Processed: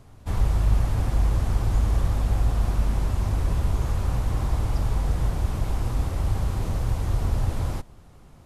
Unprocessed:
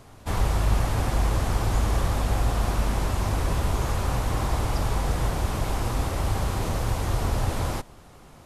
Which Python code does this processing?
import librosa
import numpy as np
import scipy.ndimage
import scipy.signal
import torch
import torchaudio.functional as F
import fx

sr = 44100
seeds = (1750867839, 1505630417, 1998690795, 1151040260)

y = fx.low_shelf(x, sr, hz=220.0, db=10.0)
y = y * 10.0 ** (-7.0 / 20.0)